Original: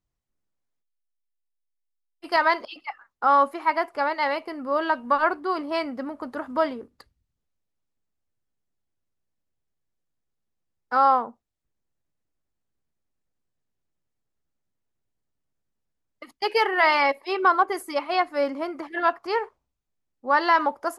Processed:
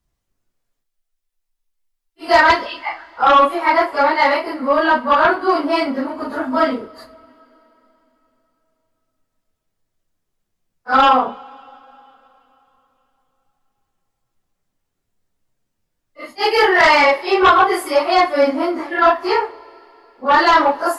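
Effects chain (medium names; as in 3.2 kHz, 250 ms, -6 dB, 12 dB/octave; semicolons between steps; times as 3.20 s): phase randomisation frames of 100 ms; sine folder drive 6 dB, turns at -6 dBFS; two-slope reverb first 0.31 s, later 3.6 s, from -22 dB, DRR 9.5 dB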